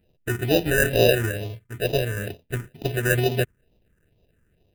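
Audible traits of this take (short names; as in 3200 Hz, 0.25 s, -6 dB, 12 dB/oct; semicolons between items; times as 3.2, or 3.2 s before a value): aliases and images of a low sample rate 1100 Hz, jitter 0%; phasing stages 4, 2.2 Hz, lowest notch 690–1500 Hz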